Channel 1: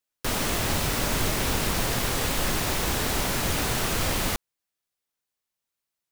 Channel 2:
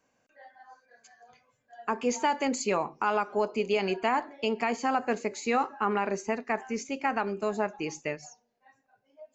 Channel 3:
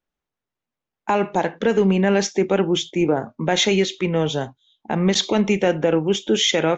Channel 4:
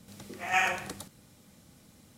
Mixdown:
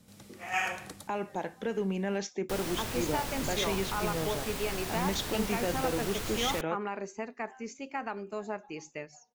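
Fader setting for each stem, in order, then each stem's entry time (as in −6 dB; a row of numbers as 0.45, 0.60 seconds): −11.0, −7.5, −14.5, −4.5 decibels; 2.25, 0.90, 0.00, 0.00 seconds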